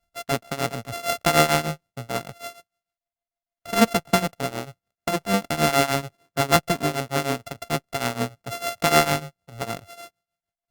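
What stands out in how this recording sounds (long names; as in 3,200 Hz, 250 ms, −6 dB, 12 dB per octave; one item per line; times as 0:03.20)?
a buzz of ramps at a fixed pitch in blocks of 64 samples
tremolo triangle 6.6 Hz, depth 90%
Opus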